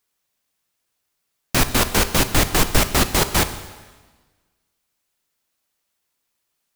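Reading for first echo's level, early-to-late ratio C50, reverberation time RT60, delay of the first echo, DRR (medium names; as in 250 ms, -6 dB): no echo, 12.0 dB, 1.4 s, no echo, 10.0 dB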